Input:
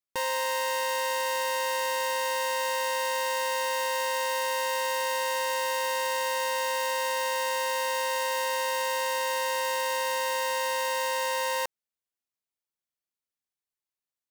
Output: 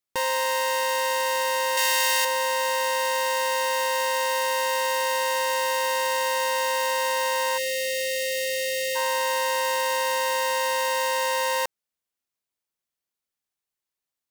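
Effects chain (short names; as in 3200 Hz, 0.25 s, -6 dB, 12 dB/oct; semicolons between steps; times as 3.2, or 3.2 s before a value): 1.77–2.25 tilt shelf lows -8 dB; 7.57–8.96 spectral delete 570–1800 Hz; gain +4 dB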